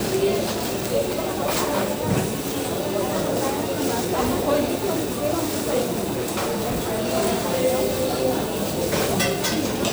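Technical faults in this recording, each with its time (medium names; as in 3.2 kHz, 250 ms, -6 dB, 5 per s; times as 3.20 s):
6.14–7.10 s: clipped -20.5 dBFS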